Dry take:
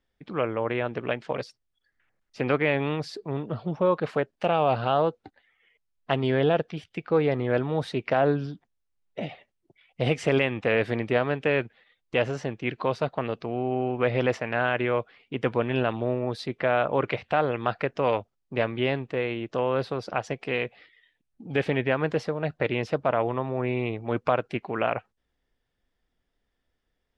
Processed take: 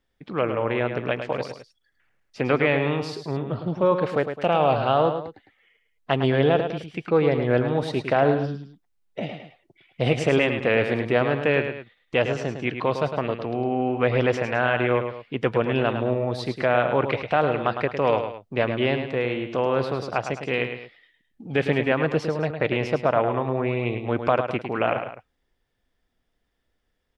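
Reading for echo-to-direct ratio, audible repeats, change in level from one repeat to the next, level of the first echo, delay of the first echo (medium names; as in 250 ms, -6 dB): -7.5 dB, 2, -7.5 dB, -8.0 dB, 106 ms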